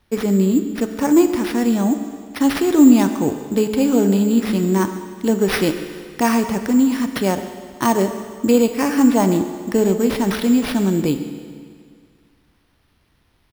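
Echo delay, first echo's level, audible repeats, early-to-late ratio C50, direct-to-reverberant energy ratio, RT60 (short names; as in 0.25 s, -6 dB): 0.131 s, -19.0 dB, 1, 9.0 dB, 7.5 dB, 2.0 s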